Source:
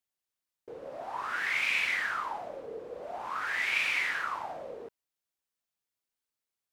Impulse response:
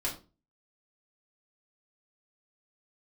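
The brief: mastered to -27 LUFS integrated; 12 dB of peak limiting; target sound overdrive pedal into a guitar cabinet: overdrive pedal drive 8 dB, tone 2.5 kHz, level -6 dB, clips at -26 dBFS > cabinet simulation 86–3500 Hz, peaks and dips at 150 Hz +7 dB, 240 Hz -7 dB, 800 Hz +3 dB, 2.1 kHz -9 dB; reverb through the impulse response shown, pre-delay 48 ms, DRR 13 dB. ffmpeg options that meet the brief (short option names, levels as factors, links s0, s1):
-filter_complex "[0:a]alimiter=level_in=1.68:limit=0.0631:level=0:latency=1,volume=0.596,asplit=2[s0][s1];[1:a]atrim=start_sample=2205,adelay=48[s2];[s1][s2]afir=irnorm=-1:irlink=0,volume=0.133[s3];[s0][s3]amix=inputs=2:normalize=0,asplit=2[s4][s5];[s5]highpass=f=720:p=1,volume=2.51,asoftclip=type=tanh:threshold=0.0501[s6];[s4][s6]amix=inputs=2:normalize=0,lowpass=f=2500:p=1,volume=0.501,highpass=86,equalizer=f=150:t=q:w=4:g=7,equalizer=f=240:t=q:w=4:g=-7,equalizer=f=800:t=q:w=4:g=3,equalizer=f=2100:t=q:w=4:g=-9,lowpass=f=3500:w=0.5412,lowpass=f=3500:w=1.3066,volume=3.55"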